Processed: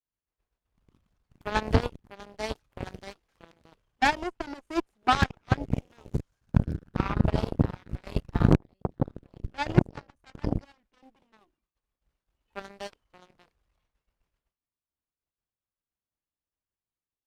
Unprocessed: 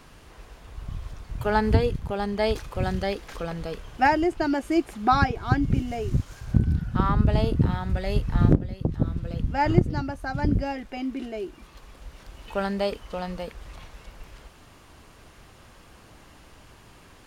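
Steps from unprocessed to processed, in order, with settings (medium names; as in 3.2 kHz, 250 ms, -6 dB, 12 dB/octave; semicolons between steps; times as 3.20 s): expander -38 dBFS; Chebyshev shaper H 3 -37 dB, 4 -28 dB, 7 -17 dB, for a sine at -5 dBFS; trim -1 dB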